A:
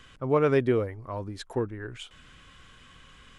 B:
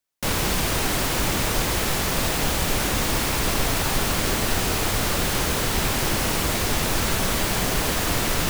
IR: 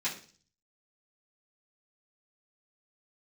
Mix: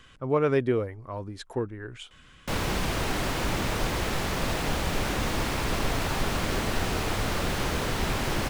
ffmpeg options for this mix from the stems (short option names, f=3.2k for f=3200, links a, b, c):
-filter_complex "[0:a]volume=-1dB[a];[1:a]lowpass=f=3.2k:p=1,adelay=2250,volume=-3.5dB[b];[a][b]amix=inputs=2:normalize=0"